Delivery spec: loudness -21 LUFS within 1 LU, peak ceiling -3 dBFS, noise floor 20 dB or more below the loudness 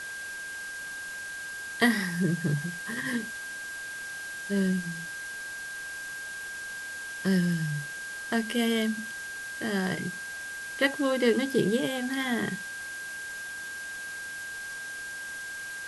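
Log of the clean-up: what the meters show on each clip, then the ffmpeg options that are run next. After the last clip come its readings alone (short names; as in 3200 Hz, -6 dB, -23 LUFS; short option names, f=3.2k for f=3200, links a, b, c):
steady tone 1600 Hz; tone level -36 dBFS; noise floor -38 dBFS; noise floor target -51 dBFS; loudness -31.0 LUFS; peak -10.0 dBFS; loudness target -21.0 LUFS
-> -af "bandreject=f=1.6k:w=30"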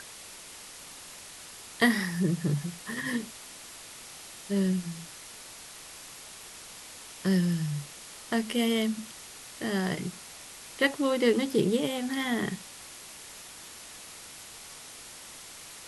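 steady tone none; noise floor -47 dBFS; noise floor target -49 dBFS
-> -af "afftdn=nr=6:nf=-47"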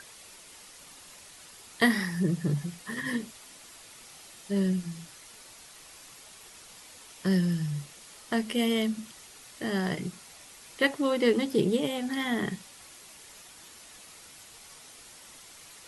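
noise floor -51 dBFS; loudness -29.0 LUFS; peak -10.0 dBFS; loudness target -21.0 LUFS
-> -af "volume=8dB,alimiter=limit=-3dB:level=0:latency=1"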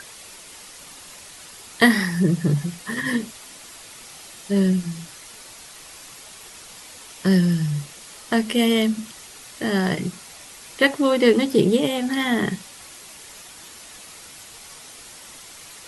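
loudness -21.0 LUFS; peak -3.0 dBFS; noise floor -43 dBFS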